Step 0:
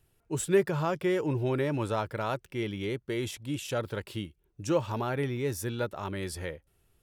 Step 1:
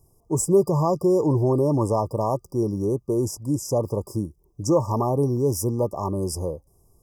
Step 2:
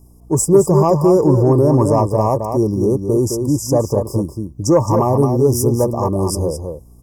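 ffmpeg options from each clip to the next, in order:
ffmpeg -i in.wav -filter_complex "[0:a]afftfilt=real='re*(1-between(b*sr/4096,1200,4800))':imag='im*(1-between(b*sr/4096,1200,4800))':win_size=4096:overlap=0.75,asplit=2[link_01][link_02];[link_02]alimiter=limit=-23.5dB:level=0:latency=1:release=40,volume=1dB[link_03];[link_01][link_03]amix=inputs=2:normalize=0,volume=3dB" out.wav
ffmpeg -i in.wav -filter_complex "[0:a]acontrast=50,aeval=exprs='val(0)+0.00447*(sin(2*PI*60*n/s)+sin(2*PI*2*60*n/s)/2+sin(2*PI*3*60*n/s)/3+sin(2*PI*4*60*n/s)/4+sin(2*PI*5*60*n/s)/5)':channel_layout=same,asplit=2[link_01][link_02];[link_02]adelay=215.7,volume=-6dB,highshelf=frequency=4000:gain=-4.85[link_03];[link_01][link_03]amix=inputs=2:normalize=0,volume=1.5dB" out.wav

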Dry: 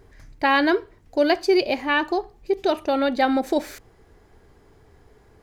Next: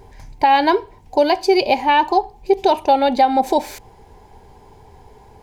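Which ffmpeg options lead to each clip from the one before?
ffmpeg -i in.wav -af "superequalizer=6b=0.631:9b=2.82:10b=0.447:11b=0.562,alimiter=limit=-12.5dB:level=0:latency=1:release=306,volume=7.5dB" out.wav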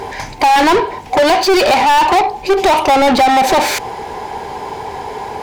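ffmpeg -i in.wav -filter_complex "[0:a]asplit=2[link_01][link_02];[link_02]highpass=frequency=720:poles=1,volume=33dB,asoftclip=type=tanh:threshold=-4.5dB[link_03];[link_01][link_03]amix=inputs=2:normalize=0,lowpass=frequency=3500:poles=1,volume=-6dB" out.wav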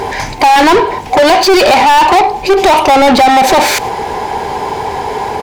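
ffmpeg -i in.wav -filter_complex "[0:a]asplit=2[link_01][link_02];[link_02]alimiter=limit=-16.5dB:level=0:latency=1:release=39,volume=1.5dB[link_03];[link_01][link_03]amix=inputs=2:normalize=0,aecho=1:1:104:0.0708,volume=1dB" out.wav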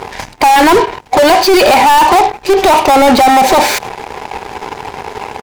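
ffmpeg -i in.wav -af "aeval=exprs='0.891*(cos(1*acos(clip(val(0)/0.891,-1,1)))-cos(1*PI/2))+0.00501*(cos(5*acos(clip(val(0)/0.891,-1,1)))-cos(5*PI/2))+0.126*(cos(7*acos(clip(val(0)/0.891,-1,1)))-cos(7*PI/2))':channel_layout=same,volume=-1dB" out.wav

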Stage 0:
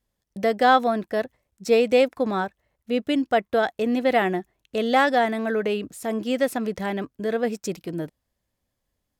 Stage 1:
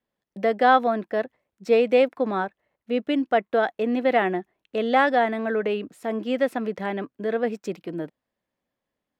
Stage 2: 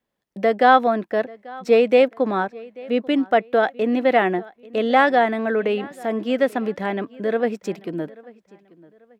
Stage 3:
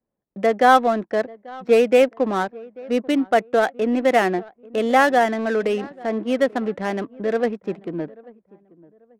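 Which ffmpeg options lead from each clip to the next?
ffmpeg -i in.wav -filter_complex "[0:a]acrossover=split=160 3500:gain=0.126 1 0.2[link_01][link_02][link_03];[link_01][link_02][link_03]amix=inputs=3:normalize=0" out.wav
ffmpeg -i in.wav -filter_complex "[0:a]asplit=2[link_01][link_02];[link_02]adelay=838,lowpass=frequency=4800:poles=1,volume=-22dB,asplit=2[link_03][link_04];[link_04]adelay=838,lowpass=frequency=4800:poles=1,volume=0.33[link_05];[link_01][link_03][link_05]amix=inputs=3:normalize=0,volume=3.5dB" out.wav
ffmpeg -i in.wav -af "adynamicsmooth=sensitivity=4:basefreq=950" out.wav

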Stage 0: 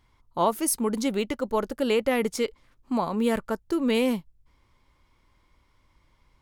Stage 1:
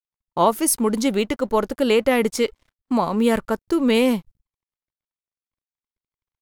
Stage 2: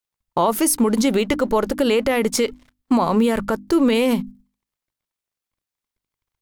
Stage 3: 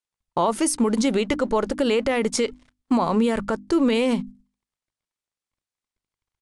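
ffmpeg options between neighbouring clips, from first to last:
ffmpeg -i in.wav -af "aeval=exprs='sgn(val(0))*max(abs(val(0))-0.00141,0)':channel_layout=same,agate=range=-22dB:threshold=-55dB:ratio=16:detection=peak,volume=6dB" out.wav
ffmpeg -i in.wav -af "bandreject=frequency=50:width_type=h:width=6,bandreject=frequency=100:width_type=h:width=6,bandreject=frequency=150:width_type=h:width=6,bandreject=frequency=200:width_type=h:width=6,bandreject=frequency=250:width_type=h:width=6,bandreject=frequency=300:width_type=h:width=6,alimiter=limit=-17dB:level=0:latency=1:release=73,volume=8dB" out.wav
ffmpeg -i in.wav -af "aresample=22050,aresample=44100,volume=-3dB" out.wav

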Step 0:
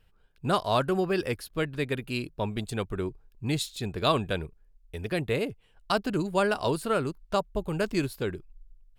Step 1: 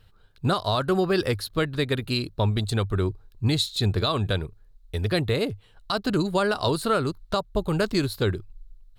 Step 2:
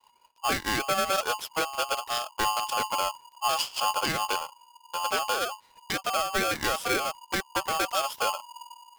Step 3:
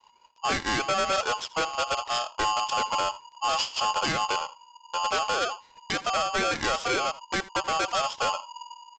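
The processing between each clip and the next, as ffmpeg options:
ffmpeg -i in.wav -af "equalizer=frequency=100:width_type=o:width=0.33:gain=11,equalizer=frequency=1250:width_type=o:width=0.33:gain=4,equalizer=frequency=2500:width_type=o:width=0.33:gain=-4,equalizer=frequency=4000:width_type=o:width=0.33:gain=10,alimiter=limit=-18.5dB:level=0:latency=1:release=212,volume=6dB" out.wav
ffmpeg -i in.wav -af "agate=range=-33dB:threshold=-51dB:ratio=3:detection=peak,aeval=exprs='val(0)*sgn(sin(2*PI*960*n/s))':channel_layout=same,volume=-4dB" out.wav
ffmpeg -i in.wav -af "aresample=16000,asoftclip=type=hard:threshold=-24.5dB,aresample=44100,aecho=1:1:81:0.106,volume=3dB" out.wav

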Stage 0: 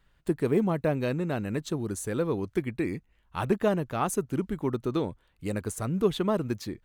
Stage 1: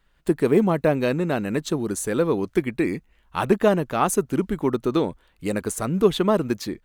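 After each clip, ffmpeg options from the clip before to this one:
ffmpeg -i in.wav -af "dynaudnorm=framelen=130:gausssize=3:maxgain=6dB,equalizer=frequency=100:width=1.4:gain=-9,volume=1.5dB" out.wav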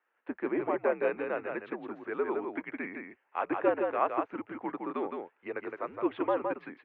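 ffmpeg -i in.wav -af "aecho=1:1:164:0.596,highpass=frequency=470:width_type=q:width=0.5412,highpass=frequency=470:width_type=q:width=1.307,lowpass=frequency=2500:width_type=q:width=0.5176,lowpass=frequency=2500:width_type=q:width=0.7071,lowpass=frequency=2500:width_type=q:width=1.932,afreqshift=-80,volume=-6.5dB" out.wav

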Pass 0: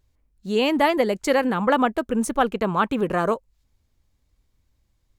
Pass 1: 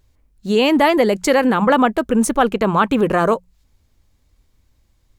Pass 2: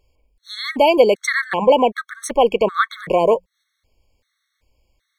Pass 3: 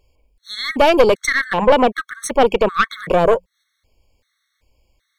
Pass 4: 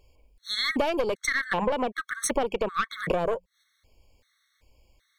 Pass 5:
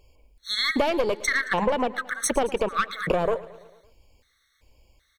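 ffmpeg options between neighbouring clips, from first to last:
ffmpeg -i in.wav -filter_complex "[0:a]bandreject=frequency=60:width_type=h:width=6,bandreject=frequency=120:width_type=h:width=6,bandreject=frequency=180:width_type=h:width=6,asplit=2[link_01][link_02];[link_02]alimiter=limit=-17dB:level=0:latency=1:release=24,volume=1dB[link_03];[link_01][link_03]amix=inputs=2:normalize=0,volume=1.5dB" out.wav
ffmpeg -i in.wav -af "equalizer=frequency=125:width_type=o:width=1:gain=-5,equalizer=frequency=250:width_type=o:width=1:gain=-4,equalizer=frequency=500:width_type=o:width=1:gain=9,equalizer=frequency=2000:width_type=o:width=1:gain=8,equalizer=frequency=4000:width_type=o:width=1:gain=6,afftfilt=real='re*gt(sin(2*PI*1.3*pts/sr)*(1-2*mod(floor(b*sr/1024/1100),2)),0)':imag='im*gt(sin(2*PI*1.3*pts/sr)*(1-2*mod(floor(b*sr/1024/1100),2)),0)':win_size=1024:overlap=0.75,volume=-3.5dB" out.wav
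ffmpeg -i in.wav -af "aeval=exprs='0.891*(cos(1*acos(clip(val(0)/0.891,-1,1)))-cos(1*PI/2))+0.158*(cos(4*acos(clip(val(0)/0.891,-1,1)))-cos(4*PI/2))+0.0891*(cos(5*acos(clip(val(0)/0.891,-1,1)))-cos(5*PI/2))':channel_layout=same,volume=-1dB" out.wav
ffmpeg -i in.wav -af "acompressor=threshold=-23dB:ratio=8" out.wav
ffmpeg -i in.wav -af "aecho=1:1:111|222|333|444|555:0.119|0.0701|0.0414|0.0244|0.0144,volume=2.5dB" out.wav

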